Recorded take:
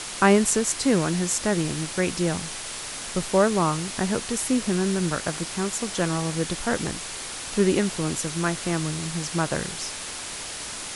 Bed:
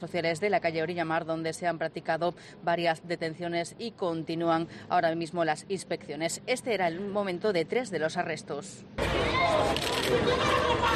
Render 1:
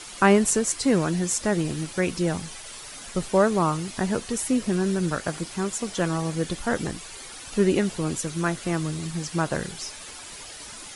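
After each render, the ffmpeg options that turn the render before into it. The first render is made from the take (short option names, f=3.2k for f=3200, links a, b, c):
-af "afftdn=nr=10:nf=-35"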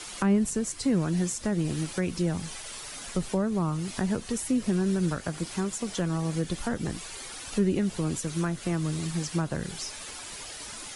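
-filter_complex "[0:a]acrossover=split=260[a][b];[b]acompressor=threshold=-31dB:ratio=6[c];[a][c]amix=inputs=2:normalize=0"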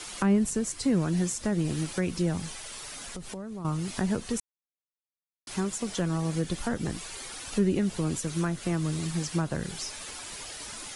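-filter_complex "[0:a]asettb=1/sr,asplit=3[a][b][c];[a]atrim=end=2.514[d];[b]atrim=start=2.51:end=3.65,asetpts=PTS-STARTPTS,afade=t=in:d=0.004:c=qsin,afade=t=out:st=1.136:d=0.004:c=qsin,acompressor=threshold=-36dB:ratio=5:attack=3.2:release=140:knee=1:detection=peak[e];[c]atrim=start=3.646[f];[d][e]acrossfade=d=0.004:c1=hsin:c2=qsin[g];[g][f]acrossfade=d=0.004:c1=qsin:c2=hsin,asplit=3[h][i][j];[h]atrim=end=4.4,asetpts=PTS-STARTPTS,afade=t=out:st=4.396:d=0.004:c=hsin[k];[i]atrim=start=4.4:end=5.47,asetpts=PTS-STARTPTS,volume=0[l];[j]atrim=start=5.47,asetpts=PTS-STARTPTS,afade=t=in:d=0.004:c=hsin[m];[k][l][m]concat=n=3:v=0:a=1"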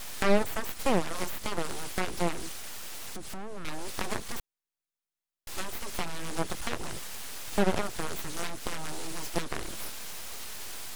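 -af "aeval=exprs='0.237*(cos(1*acos(clip(val(0)/0.237,-1,1)))-cos(1*PI/2))+0.0841*(cos(7*acos(clip(val(0)/0.237,-1,1)))-cos(7*PI/2))':c=same,aeval=exprs='abs(val(0))':c=same"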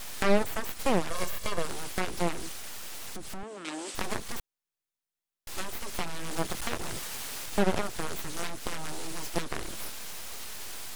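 -filter_complex "[0:a]asettb=1/sr,asplit=3[a][b][c];[a]atrim=end=1.104[d];[b]atrim=start=1.1:end=1.65,asetpts=PTS-STARTPTS,afade=t=in:d=0.004:c=qsin,afade=t=out:st=0.546:d=0.004:c=qsin,aecho=1:1:1.8:0.54,atrim=end_sample=24255[e];[c]atrim=start=1.646[f];[d][e]acrossfade=d=0.004:c1=hsin:c2=qsin[g];[g][f]acrossfade=d=0.004:c1=qsin:c2=hsin,asettb=1/sr,asplit=3[h][i][j];[h]atrim=end=3.434[k];[i]atrim=start=3.43:end=3.95,asetpts=PTS-STARTPTS,afade=t=in:d=0.004:c=qsin,afade=t=out:st=0.516:d=0.004:c=qsin,highpass=f=220:w=0.5412,highpass=f=220:w=1.3066,equalizer=f=310:t=q:w=4:g=6,equalizer=f=3.1k:t=q:w=4:g=4,equalizer=f=8.1k:t=q:w=4:g=9,lowpass=f=9.1k:w=0.5412,lowpass=f=9.1k:w=1.3066[l];[j]atrim=start=3.946[m];[k][l]acrossfade=d=0.004:c1=hsin:c2=qsin[n];[n][m]acrossfade=d=0.004:c1=qsin:c2=hsin,asettb=1/sr,asplit=3[o][p][q];[o]atrim=end=6.314[r];[p]atrim=start=6.31:end=7.46,asetpts=PTS-STARTPTS,afade=t=in:d=0.004:c=qsin,afade=t=out:st=1.146:d=0.004:c=qsin,acrusher=bits=5:mix=0:aa=0.5[s];[q]atrim=start=7.456[t];[r][s]acrossfade=d=0.004:c1=hsin:c2=qsin[u];[u][t]acrossfade=d=0.004:c1=qsin:c2=hsin"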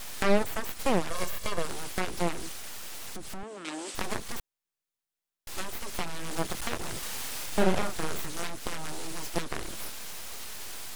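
-filter_complex "[0:a]asettb=1/sr,asplit=3[a][b][c];[a]atrim=end=6.994[d];[b]atrim=start=6.99:end=8.26,asetpts=PTS-STARTPTS,afade=t=in:d=0.004:c=qsin,afade=t=out:st=1.266:d=0.004:c=qsin,asplit=2[e][f];[f]adelay=38,volume=-4.5dB[g];[e][g]amix=inputs=2:normalize=0,atrim=end_sample=56007[h];[c]atrim=start=8.256[i];[d][h]acrossfade=d=0.004:c1=hsin:c2=qsin[j];[j][i]acrossfade=d=0.004:c1=qsin:c2=hsin"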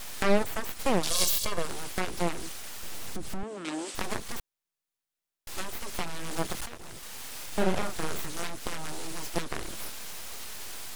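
-filter_complex "[0:a]asettb=1/sr,asplit=3[a][b][c];[a]atrim=end=1.034[d];[b]atrim=start=1.03:end=1.45,asetpts=PTS-STARTPTS,afade=t=in:d=0.004:c=qsin,afade=t=out:st=0.416:d=0.004:c=qsin,highshelf=f=2.7k:t=q:w=1.5:g=12[e];[c]atrim=start=1.446[f];[d][e]acrossfade=d=0.004:c1=hsin:c2=qsin[g];[g][f]acrossfade=d=0.004:c1=qsin:c2=hsin,asettb=1/sr,asplit=3[h][i][j];[h]atrim=end=2.834[k];[i]atrim=start=2.83:end=3.85,asetpts=PTS-STARTPTS,afade=t=in:d=0.004:c=qsin,afade=t=out:st=1.016:d=0.004:c=qsin,lowshelf=f=430:g=7[l];[j]atrim=start=3.846[m];[k][l]acrossfade=d=0.004:c1=hsin:c2=qsin[n];[n][m]acrossfade=d=0.004:c1=qsin:c2=hsin,asplit=2[o][p];[o]atrim=end=6.66,asetpts=PTS-STARTPTS,afade=t=out:st=6.656:d=0.004:c=hsin:silence=0.251189[q];[p]atrim=start=6.66,asetpts=PTS-STARTPTS,afade=t=in:d=1.41:silence=0.251189[r];[q][r]concat=n=2:v=0:a=1"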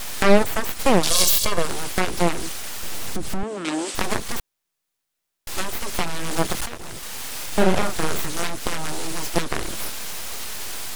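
-af "volume=9dB,alimiter=limit=-3dB:level=0:latency=1"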